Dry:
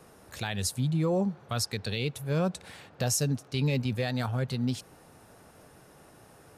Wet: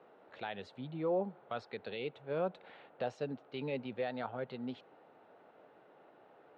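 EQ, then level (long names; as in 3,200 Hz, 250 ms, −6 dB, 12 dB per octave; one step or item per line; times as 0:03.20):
high-frequency loss of the air 480 metres
loudspeaker in its box 430–5,800 Hz, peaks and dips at 1,100 Hz −5 dB, 1,700 Hz −5 dB, 2,400 Hz −3 dB, 5,100 Hz −8 dB
0.0 dB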